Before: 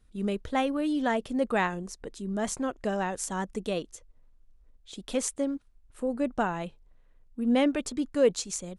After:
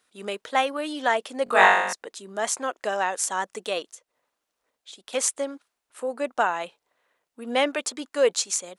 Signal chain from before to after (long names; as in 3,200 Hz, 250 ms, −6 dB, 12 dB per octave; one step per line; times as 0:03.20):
high-pass filter 650 Hz 12 dB per octave
0:01.44–0:01.93: flutter between parallel walls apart 3.6 metres, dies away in 0.85 s
0:03.88–0:05.13: downward compressor 10 to 1, threshold −49 dBFS, peak gain reduction 10.5 dB
level +8 dB